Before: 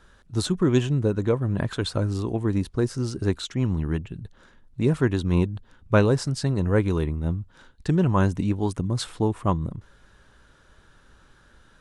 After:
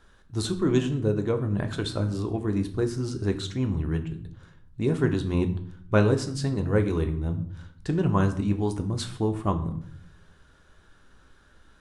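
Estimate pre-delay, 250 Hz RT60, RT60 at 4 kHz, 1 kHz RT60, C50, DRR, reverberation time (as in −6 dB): 3 ms, 1.0 s, 0.45 s, 0.60 s, 12.5 dB, 6.0 dB, 0.60 s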